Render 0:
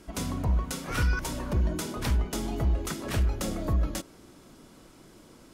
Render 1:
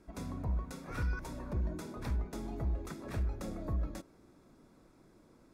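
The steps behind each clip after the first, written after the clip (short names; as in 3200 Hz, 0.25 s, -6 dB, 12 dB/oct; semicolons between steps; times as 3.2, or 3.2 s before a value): high shelf 2500 Hz -9.5 dB; notch 3000 Hz, Q 5.8; gain -8.5 dB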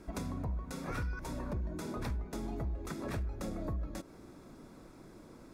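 compressor 5:1, threshold -44 dBFS, peak gain reduction 12.5 dB; gain +8.5 dB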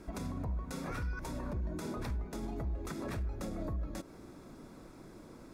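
limiter -32 dBFS, peak gain reduction 5.5 dB; gain +1.5 dB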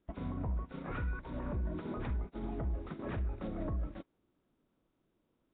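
thin delay 0.495 s, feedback 53%, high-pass 1500 Hz, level -14.5 dB; gate -39 dBFS, range -27 dB; gain +1 dB; Nellymoser 16 kbps 8000 Hz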